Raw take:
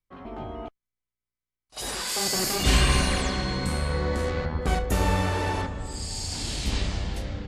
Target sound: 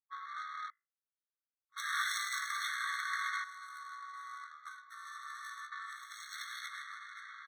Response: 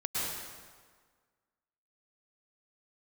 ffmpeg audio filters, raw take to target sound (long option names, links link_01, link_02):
-filter_complex "[0:a]acompressor=threshold=-31dB:ratio=6,bandreject=frequency=4000:width=7.1,asplit=2[link_01][link_02];[link_02]adelay=17,volume=-2.5dB[link_03];[link_01][link_03]amix=inputs=2:normalize=0,bandreject=frequency=53.55:width_type=h:width=4,bandreject=frequency=107.1:width_type=h:width=4,bandreject=frequency=160.65:width_type=h:width=4,bandreject=frequency=214.2:width_type=h:width=4,bandreject=frequency=267.75:width_type=h:width=4,bandreject=frequency=321.3:width_type=h:width=4,bandreject=frequency=374.85:width_type=h:width=4,bandreject=frequency=428.4:width_type=h:width=4,bandreject=frequency=481.95:width_type=h:width=4,bandreject=frequency=535.5:width_type=h:width=4,bandreject=frequency=589.05:width_type=h:width=4,bandreject=frequency=642.6:width_type=h:width=4,bandreject=frequency=696.15:width_type=h:width=4,adynamicsmooth=sensitivity=7.5:basefreq=600,asettb=1/sr,asplit=3[link_04][link_05][link_06];[link_04]atrim=end=3.444[link_07];[link_05]atrim=start=3.44:end=5.72,asetpts=PTS-STARTPTS,afade=type=in:duration=0.004:curve=qsin,afade=type=out:start_time=2.276:duration=0.004:curve=qsin,equalizer=frequency=2400:width=0.53:gain=-13.5[link_08];[link_06]atrim=start=5.716[link_09];[link_07][link_08]acrossfade=duration=0.004:curve1=hsin:curve2=qsin[link_10];[link_10][link_09]acrossfade=duration=0.004:curve1=qsin:curve2=hsin,afftfilt=real='re*eq(mod(floor(b*sr/1024/1100),2),1)':imag='im*eq(mod(floor(b*sr/1024/1100),2),1)':win_size=1024:overlap=0.75,volume=7dB"